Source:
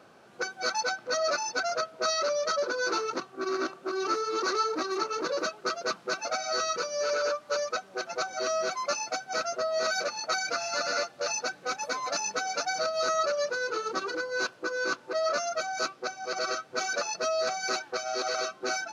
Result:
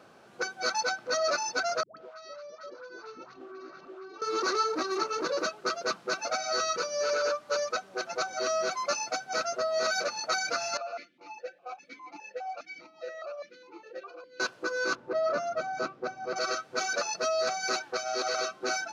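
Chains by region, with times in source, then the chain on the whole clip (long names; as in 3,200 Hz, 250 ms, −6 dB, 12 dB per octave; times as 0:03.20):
0:01.83–0:04.22: downward compressor 8 to 1, threshold −42 dBFS + high-frequency loss of the air 130 metres + all-pass dispersion highs, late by 140 ms, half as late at 600 Hz
0:10.77–0:14.40: comb filter 5.7 ms, depth 53% + formant filter that steps through the vowels 4.9 Hz
0:14.95–0:16.36: low-pass filter 1,300 Hz 6 dB per octave + low-shelf EQ 290 Hz +8.5 dB
whole clip: no processing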